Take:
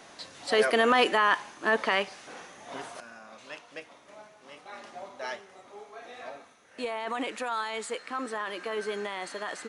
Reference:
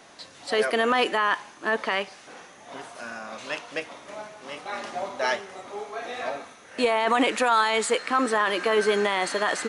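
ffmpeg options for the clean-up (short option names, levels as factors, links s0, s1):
-af "asetnsamples=n=441:p=0,asendcmd='3 volume volume 11dB',volume=1"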